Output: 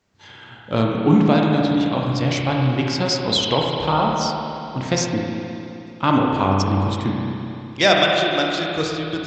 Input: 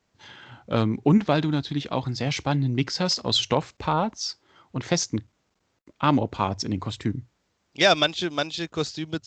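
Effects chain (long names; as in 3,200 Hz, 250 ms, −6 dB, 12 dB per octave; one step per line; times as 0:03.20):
spring reverb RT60 2.9 s, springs 31/52 ms, chirp 45 ms, DRR −1.5 dB
level +2 dB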